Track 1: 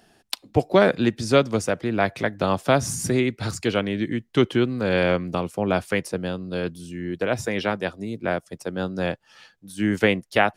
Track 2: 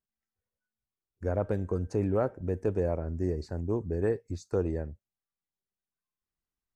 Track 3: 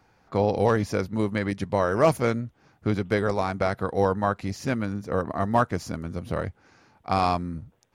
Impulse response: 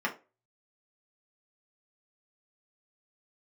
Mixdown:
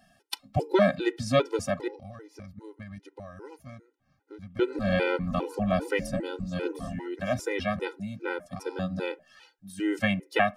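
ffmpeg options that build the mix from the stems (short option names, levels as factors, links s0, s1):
-filter_complex "[0:a]volume=0.708,asplit=3[s0][s1][s2];[s0]atrim=end=1.88,asetpts=PTS-STARTPTS,afade=t=out:st=1.876:d=0.004:c=hsin[s3];[s1]atrim=start=1.88:end=4.59,asetpts=PTS-STARTPTS,volume=0[s4];[s2]atrim=start=4.59,asetpts=PTS-STARTPTS,afade=t=in:d=0.004:c=hsin[s5];[s3][s4][s5]concat=n=3:v=0:a=1,asplit=3[s6][s7][s8];[s7]volume=0.119[s9];[1:a]equalizer=f=170:w=1.5:g=-5,aecho=1:1:7.1:0.31,aeval=exprs='val(0)*sin(2*PI*130*n/s)':c=same,adelay=2100,volume=0.944[s10];[2:a]acompressor=threshold=0.0447:ratio=12,lowshelf=f=120:g=8.5,adelay=1450,volume=0.282,asplit=2[s11][s12];[s12]volume=0.0794[s13];[s8]apad=whole_len=390663[s14];[s10][s14]sidechaingate=range=0.002:threshold=0.002:ratio=16:detection=peak[s15];[3:a]atrim=start_sample=2205[s16];[s9][s13]amix=inputs=2:normalize=0[s17];[s17][s16]afir=irnorm=-1:irlink=0[s18];[s6][s15][s11][s18]amix=inputs=4:normalize=0,afftfilt=real='re*gt(sin(2*PI*2.5*pts/sr)*(1-2*mod(floor(b*sr/1024/260),2)),0)':imag='im*gt(sin(2*PI*2.5*pts/sr)*(1-2*mod(floor(b*sr/1024/260),2)),0)':win_size=1024:overlap=0.75"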